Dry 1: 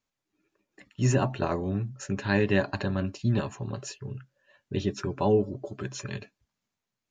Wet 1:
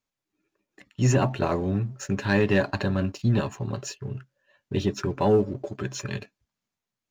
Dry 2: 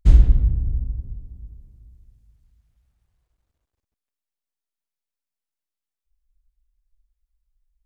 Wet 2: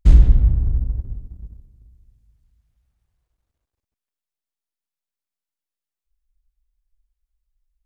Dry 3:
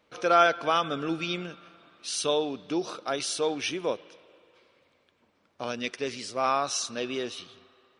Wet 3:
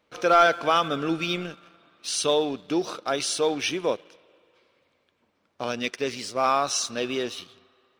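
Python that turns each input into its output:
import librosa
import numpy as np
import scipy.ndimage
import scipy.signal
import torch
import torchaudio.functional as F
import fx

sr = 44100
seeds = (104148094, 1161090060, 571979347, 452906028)

y = fx.leveller(x, sr, passes=1)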